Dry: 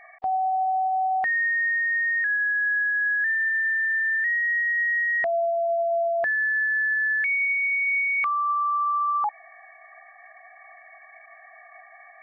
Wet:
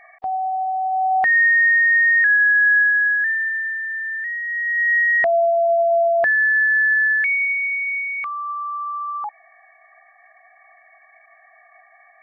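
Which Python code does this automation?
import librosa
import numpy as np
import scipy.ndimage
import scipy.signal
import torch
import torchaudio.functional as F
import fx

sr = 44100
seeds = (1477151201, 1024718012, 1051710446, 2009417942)

y = fx.gain(x, sr, db=fx.line((0.78, 1.0), (1.37, 9.0), (2.79, 9.0), (3.82, -2.5), (4.45, -2.5), (4.93, 7.0), (6.98, 7.0), (8.28, -3.0)))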